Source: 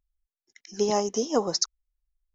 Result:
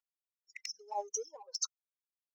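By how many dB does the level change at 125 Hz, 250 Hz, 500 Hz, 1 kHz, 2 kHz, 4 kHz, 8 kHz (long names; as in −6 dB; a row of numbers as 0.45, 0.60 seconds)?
below −40 dB, below −35 dB, −19.0 dB, −10.5 dB, −8.0 dB, −12.0 dB, can't be measured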